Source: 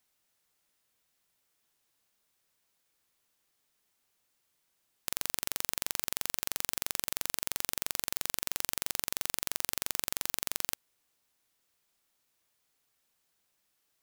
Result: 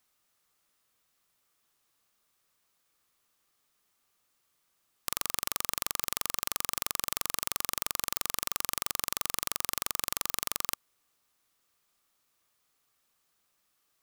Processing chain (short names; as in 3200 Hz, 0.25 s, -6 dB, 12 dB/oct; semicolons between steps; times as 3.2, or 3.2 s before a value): bell 1200 Hz +8 dB 0.24 oct; gain +1.5 dB